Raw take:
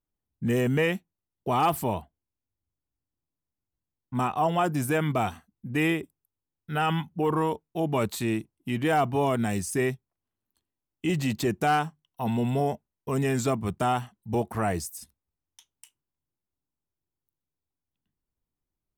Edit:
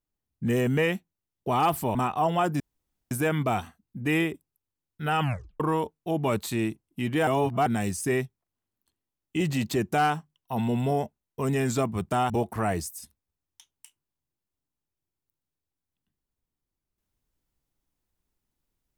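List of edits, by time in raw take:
0:01.95–0:04.15: remove
0:04.80: splice in room tone 0.51 s
0:06.90: tape stop 0.39 s
0:08.96–0:09.35: reverse
0:13.99–0:14.29: remove

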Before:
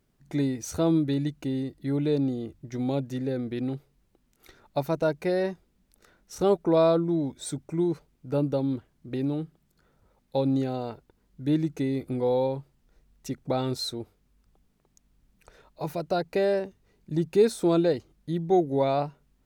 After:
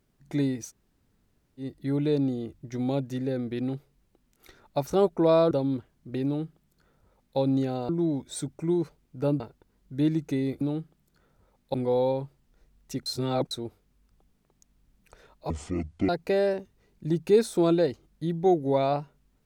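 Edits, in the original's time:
0:00.67–0:01.62: fill with room tone, crossfade 0.10 s
0:04.87–0:06.35: remove
0:06.99–0:08.50: move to 0:10.88
0:09.24–0:10.37: duplicate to 0:12.09
0:13.41–0:13.86: reverse
0:15.85–0:16.15: play speed 51%

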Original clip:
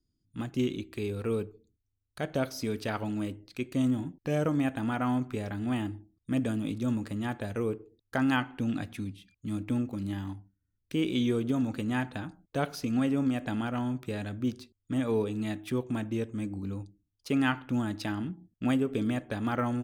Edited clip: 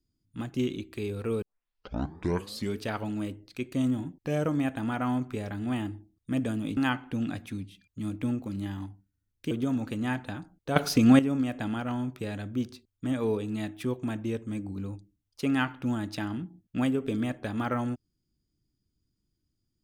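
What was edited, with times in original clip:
0:01.42: tape start 1.37 s
0:06.77–0:08.24: remove
0:10.98–0:11.38: remove
0:12.63–0:13.06: clip gain +10 dB

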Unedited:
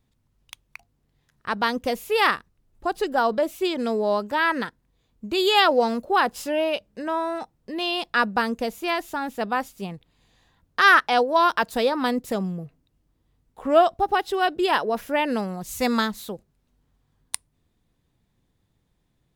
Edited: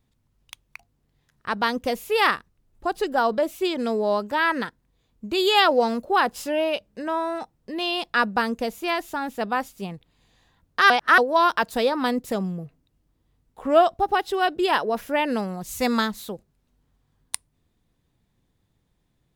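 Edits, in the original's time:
0:10.90–0:11.18: reverse

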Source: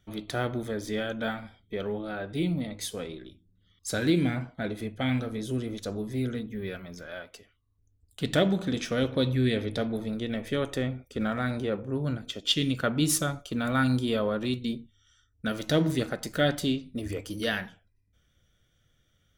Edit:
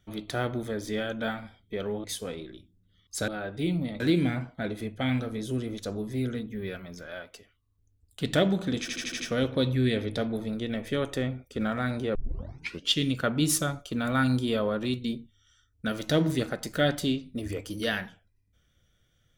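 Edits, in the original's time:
0:02.04–0:02.76: move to 0:04.00
0:08.80: stutter 0.08 s, 6 plays
0:11.75: tape start 0.75 s

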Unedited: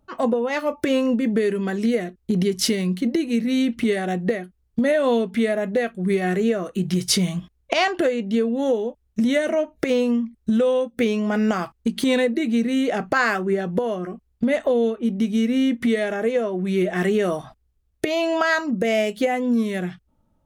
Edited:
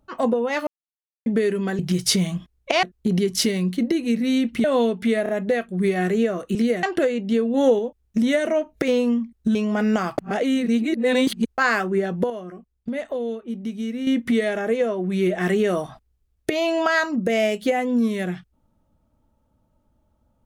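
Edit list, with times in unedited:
0:00.67–0:01.26: silence
0:01.79–0:02.07: swap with 0:06.81–0:07.85
0:03.88–0:04.96: remove
0:05.55: stutter 0.03 s, 3 plays
0:08.56–0:08.81: clip gain +4 dB
0:10.57–0:11.10: remove
0:11.73–0:13.13: reverse
0:13.85–0:15.62: clip gain −7.5 dB

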